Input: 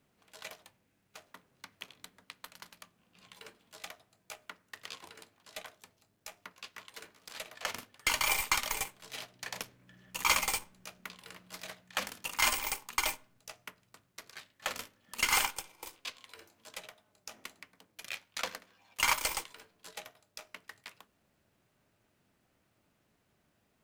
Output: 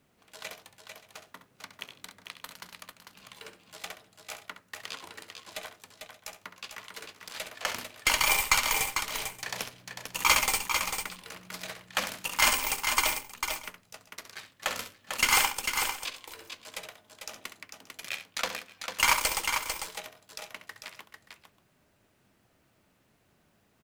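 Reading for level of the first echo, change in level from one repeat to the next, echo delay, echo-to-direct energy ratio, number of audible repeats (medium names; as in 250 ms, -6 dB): -10.5 dB, no regular repeats, 67 ms, -4.5 dB, 3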